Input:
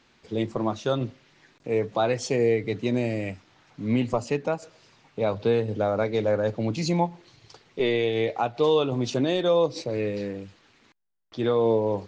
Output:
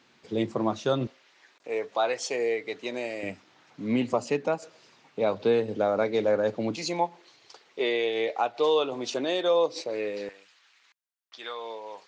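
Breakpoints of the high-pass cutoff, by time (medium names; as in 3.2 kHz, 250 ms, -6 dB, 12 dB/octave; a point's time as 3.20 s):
130 Hz
from 1.07 s 550 Hz
from 3.23 s 200 Hz
from 6.76 s 420 Hz
from 10.29 s 1.3 kHz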